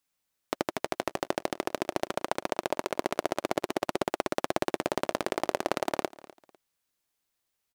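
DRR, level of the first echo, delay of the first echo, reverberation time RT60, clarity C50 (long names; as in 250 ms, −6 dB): no reverb audible, −20.0 dB, 250 ms, no reverb audible, no reverb audible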